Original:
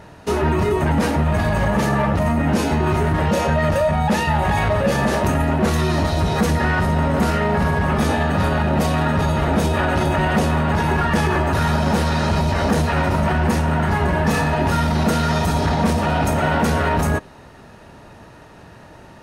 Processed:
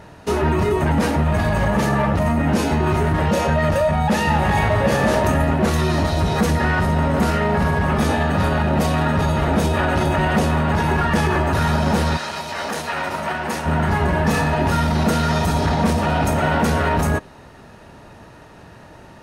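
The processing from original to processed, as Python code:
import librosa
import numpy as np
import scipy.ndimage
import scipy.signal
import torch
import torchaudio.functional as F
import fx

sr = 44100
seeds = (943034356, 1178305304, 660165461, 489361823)

y = fx.reverb_throw(x, sr, start_s=4.07, length_s=1.02, rt60_s=2.8, drr_db=5.0)
y = fx.highpass(y, sr, hz=fx.line((12.16, 1500.0), (13.65, 540.0)), slope=6, at=(12.16, 13.65), fade=0.02)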